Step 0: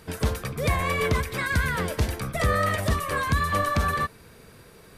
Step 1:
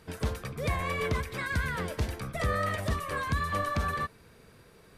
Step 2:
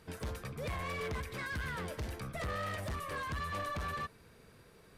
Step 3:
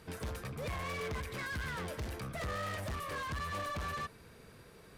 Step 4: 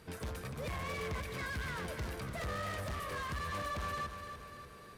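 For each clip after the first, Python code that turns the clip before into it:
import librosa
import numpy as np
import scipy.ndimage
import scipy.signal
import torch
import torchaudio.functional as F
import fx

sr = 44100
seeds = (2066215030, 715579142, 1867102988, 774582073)

y1 = fx.high_shelf(x, sr, hz=8800.0, db=-6.0)
y1 = y1 * librosa.db_to_amplitude(-6.0)
y2 = 10.0 ** (-30.5 / 20.0) * np.tanh(y1 / 10.0 ** (-30.5 / 20.0))
y2 = y2 * librosa.db_to_amplitude(-3.5)
y3 = fx.cheby_harmonics(y2, sr, harmonics=(5,), levels_db=(-20,), full_scale_db=-33.5)
y4 = fx.echo_feedback(y3, sr, ms=294, feedback_pct=57, wet_db=-9)
y4 = y4 * librosa.db_to_amplitude(-1.0)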